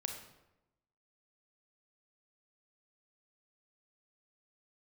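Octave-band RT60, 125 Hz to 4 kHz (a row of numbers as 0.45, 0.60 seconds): 1.1, 1.1, 1.0, 0.90, 0.75, 0.65 seconds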